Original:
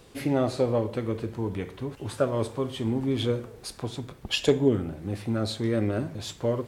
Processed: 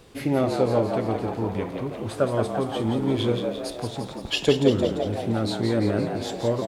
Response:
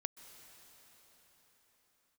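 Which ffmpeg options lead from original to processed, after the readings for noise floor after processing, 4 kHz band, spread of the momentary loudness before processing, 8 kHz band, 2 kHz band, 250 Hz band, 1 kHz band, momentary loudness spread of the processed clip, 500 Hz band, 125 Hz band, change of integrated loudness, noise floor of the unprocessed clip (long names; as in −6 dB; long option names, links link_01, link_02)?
−37 dBFS, +3.0 dB, 11 LU, +1.0 dB, +3.5 dB, +3.0 dB, +6.5 dB, 10 LU, +3.5 dB, +2.0 dB, +3.0 dB, −50 dBFS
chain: -filter_complex "[0:a]asplit=9[link_01][link_02][link_03][link_04][link_05][link_06][link_07][link_08][link_09];[link_02]adelay=172,afreqshift=83,volume=-6dB[link_10];[link_03]adelay=344,afreqshift=166,volume=-10.3dB[link_11];[link_04]adelay=516,afreqshift=249,volume=-14.6dB[link_12];[link_05]adelay=688,afreqshift=332,volume=-18.9dB[link_13];[link_06]adelay=860,afreqshift=415,volume=-23.2dB[link_14];[link_07]adelay=1032,afreqshift=498,volume=-27.5dB[link_15];[link_08]adelay=1204,afreqshift=581,volume=-31.8dB[link_16];[link_09]adelay=1376,afreqshift=664,volume=-36.1dB[link_17];[link_01][link_10][link_11][link_12][link_13][link_14][link_15][link_16][link_17]amix=inputs=9:normalize=0,asplit=2[link_18][link_19];[1:a]atrim=start_sample=2205,lowpass=5700[link_20];[link_19][link_20]afir=irnorm=-1:irlink=0,volume=-9.5dB[link_21];[link_18][link_21]amix=inputs=2:normalize=0"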